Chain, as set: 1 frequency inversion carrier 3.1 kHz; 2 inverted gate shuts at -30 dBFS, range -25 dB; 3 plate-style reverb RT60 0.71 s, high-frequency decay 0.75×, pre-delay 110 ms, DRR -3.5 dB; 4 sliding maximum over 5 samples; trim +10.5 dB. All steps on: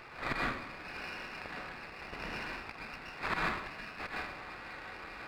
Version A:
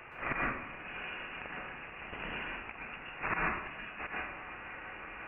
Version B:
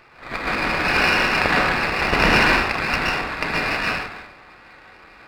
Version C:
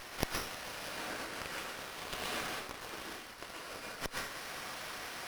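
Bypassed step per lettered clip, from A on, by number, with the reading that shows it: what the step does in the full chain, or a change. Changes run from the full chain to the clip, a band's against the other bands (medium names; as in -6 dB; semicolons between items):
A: 4, distortion -10 dB; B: 2, momentary loudness spread change +1 LU; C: 1, 8 kHz band +17.5 dB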